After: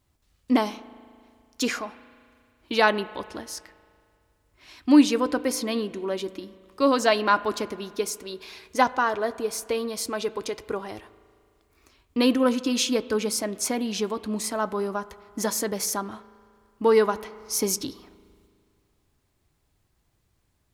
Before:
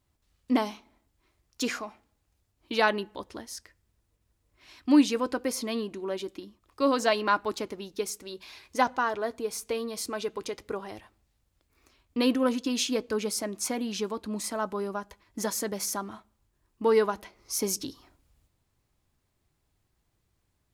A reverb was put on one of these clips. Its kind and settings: spring tank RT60 2.2 s, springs 37 ms, chirp 70 ms, DRR 17 dB; trim +4 dB

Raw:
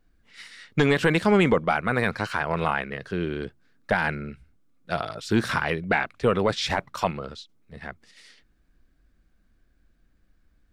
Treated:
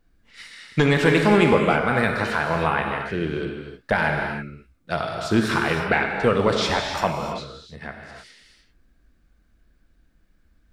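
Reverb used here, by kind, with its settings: gated-style reverb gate 340 ms flat, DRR 2 dB; trim +1.5 dB

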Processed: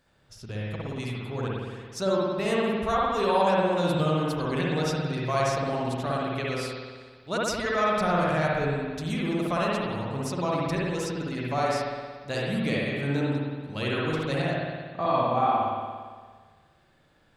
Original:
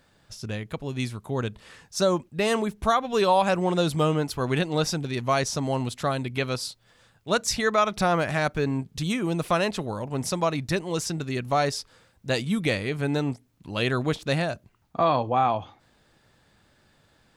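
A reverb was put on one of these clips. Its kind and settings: spring tank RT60 1.6 s, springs 57 ms, chirp 40 ms, DRR -5 dB; trim -7.5 dB

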